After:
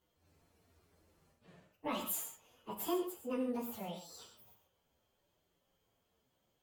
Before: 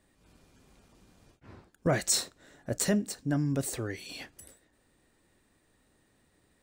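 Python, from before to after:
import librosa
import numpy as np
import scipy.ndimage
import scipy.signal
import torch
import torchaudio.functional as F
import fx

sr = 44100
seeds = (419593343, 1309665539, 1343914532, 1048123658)

y = fx.pitch_bins(x, sr, semitones=9.5)
y = fx.rev_gated(y, sr, seeds[0], gate_ms=160, shape='flat', drr_db=5.0)
y = F.gain(torch.from_numpy(y), -7.0).numpy()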